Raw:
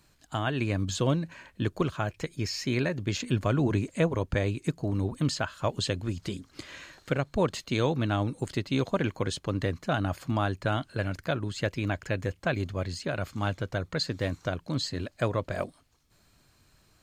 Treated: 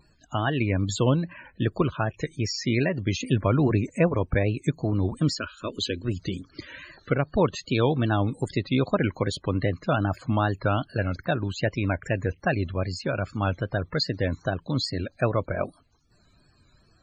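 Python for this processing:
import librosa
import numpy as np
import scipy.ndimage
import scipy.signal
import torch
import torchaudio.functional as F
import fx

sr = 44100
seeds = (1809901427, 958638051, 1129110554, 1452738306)

y = fx.vibrato(x, sr, rate_hz=2.5, depth_cents=88.0)
y = fx.fixed_phaser(y, sr, hz=320.0, stages=4, at=(5.38, 6.05))
y = fx.spec_topn(y, sr, count=64)
y = y * 10.0 ** (4.0 / 20.0)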